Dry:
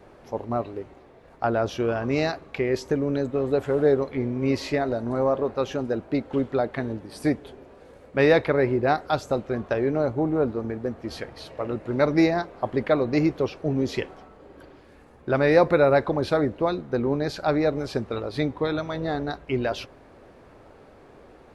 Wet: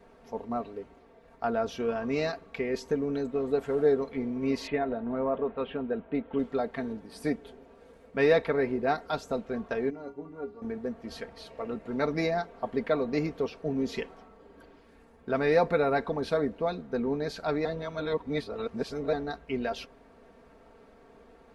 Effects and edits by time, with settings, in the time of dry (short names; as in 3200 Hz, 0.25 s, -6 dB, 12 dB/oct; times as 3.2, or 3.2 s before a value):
4.67–6.39 steep low-pass 3500 Hz 48 dB/oct
9.9–10.62 metallic resonator 85 Hz, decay 0.3 s, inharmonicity 0.03
17.65–19.13 reverse
whole clip: comb 4.4 ms, depth 65%; gain -7 dB